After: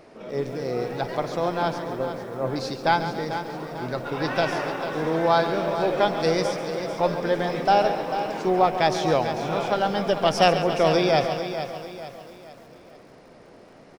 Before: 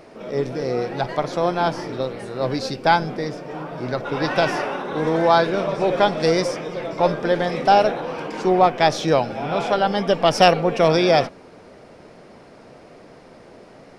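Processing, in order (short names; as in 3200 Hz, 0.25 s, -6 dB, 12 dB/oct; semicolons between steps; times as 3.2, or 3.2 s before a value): 1.78–2.56 LPF 2000 Hz 24 dB/oct; on a send: feedback echo 0.444 s, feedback 41%, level -10 dB; on the sum: lo-fi delay 0.139 s, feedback 55%, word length 7-bit, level -11 dB; gain -4.5 dB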